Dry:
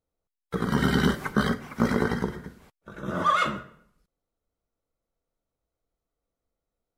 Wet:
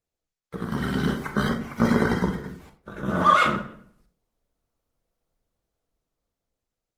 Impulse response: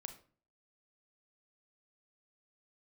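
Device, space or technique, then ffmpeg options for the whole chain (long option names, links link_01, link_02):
speakerphone in a meeting room: -filter_complex "[1:a]atrim=start_sample=2205[link_01];[0:a][link_01]afir=irnorm=-1:irlink=0,dynaudnorm=framelen=490:gausssize=7:maxgain=11dB" -ar 48000 -c:a libopus -b:a 20k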